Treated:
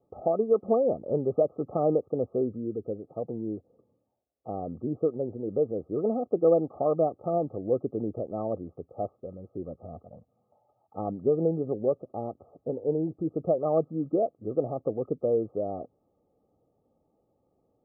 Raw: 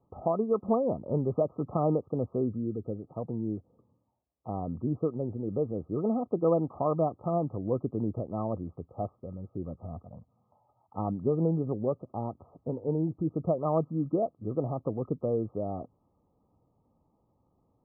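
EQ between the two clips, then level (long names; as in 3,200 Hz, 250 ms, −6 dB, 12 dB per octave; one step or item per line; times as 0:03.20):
Butterworth band-reject 980 Hz, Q 4.8
parametric band 490 Hz +12 dB 1.8 octaves
−7.0 dB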